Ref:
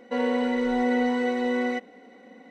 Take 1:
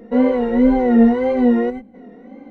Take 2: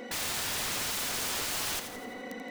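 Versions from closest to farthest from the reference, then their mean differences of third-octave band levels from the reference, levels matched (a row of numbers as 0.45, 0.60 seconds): 1, 2; 6.5, 18.5 decibels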